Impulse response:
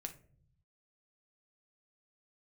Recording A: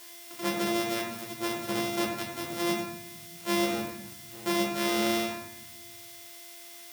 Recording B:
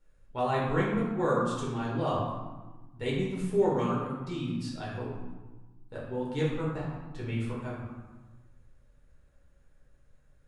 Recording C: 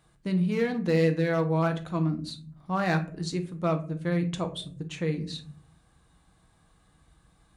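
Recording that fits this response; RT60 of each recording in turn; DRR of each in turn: C; 0.80, 1.3, 0.55 seconds; −2.0, −6.5, 5.5 decibels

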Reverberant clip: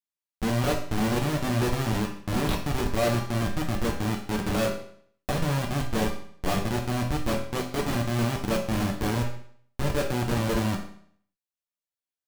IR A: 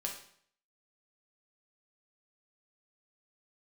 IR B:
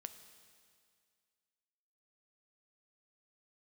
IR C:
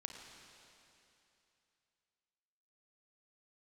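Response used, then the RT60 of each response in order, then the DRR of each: A; 0.60, 2.1, 2.9 seconds; −0.5, 9.0, 2.5 decibels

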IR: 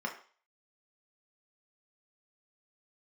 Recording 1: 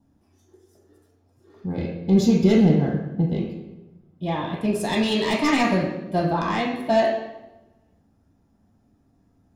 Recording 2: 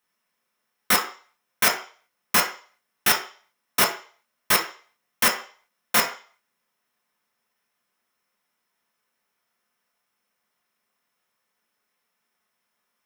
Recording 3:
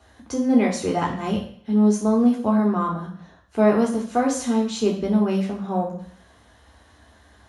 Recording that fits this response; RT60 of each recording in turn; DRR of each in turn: 2; 1.1, 0.40, 0.60 seconds; −2.0, 0.5, −2.0 decibels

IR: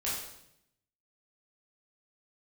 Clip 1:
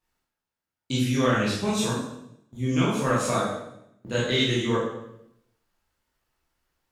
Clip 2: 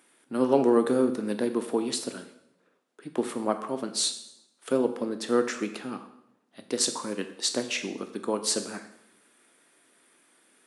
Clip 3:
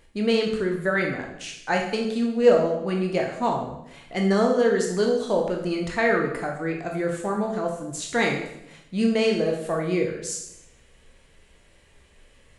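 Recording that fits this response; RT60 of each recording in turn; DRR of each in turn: 1; 0.75, 0.75, 0.75 seconds; −8.0, 7.5, 0.5 decibels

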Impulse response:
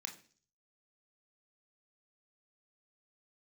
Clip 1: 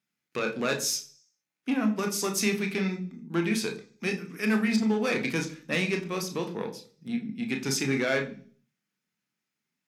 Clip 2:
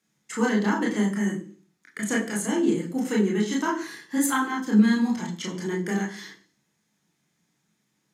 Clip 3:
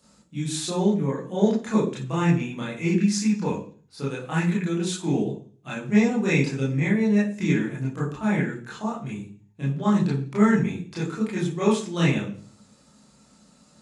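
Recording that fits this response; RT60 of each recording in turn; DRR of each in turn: 1; 0.45, 0.45, 0.45 seconds; 3.0, −3.0, −7.5 decibels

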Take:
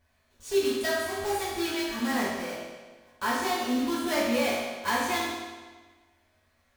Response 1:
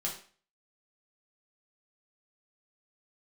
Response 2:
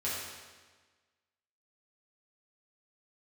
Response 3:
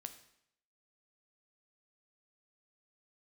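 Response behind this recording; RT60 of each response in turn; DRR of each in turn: 2; 0.40, 1.4, 0.70 seconds; −3.0, −8.5, 7.5 decibels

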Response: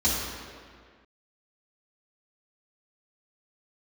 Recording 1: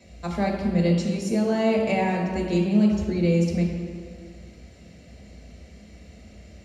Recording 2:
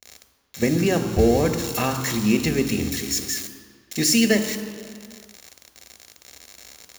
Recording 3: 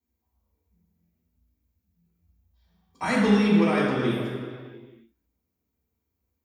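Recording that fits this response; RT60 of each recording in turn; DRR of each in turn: 3; 1.9, 1.9, 1.9 seconds; −1.5, 7.0, −9.0 decibels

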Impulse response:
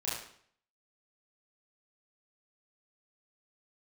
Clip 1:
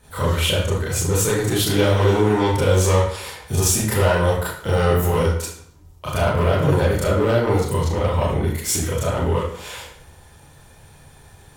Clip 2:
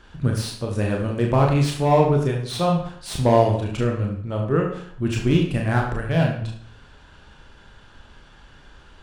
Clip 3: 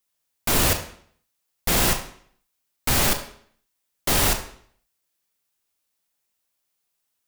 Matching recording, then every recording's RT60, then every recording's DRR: 1; 0.60, 0.60, 0.60 seconds; −9.0, −0.5, 5.5 decibels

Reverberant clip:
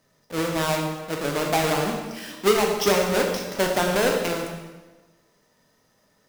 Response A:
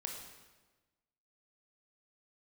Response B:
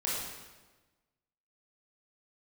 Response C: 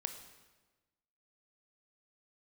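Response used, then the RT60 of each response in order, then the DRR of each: A; 1.2, 1.2, 1.2 seconds; 1.0, −6.5, 7.0 decibels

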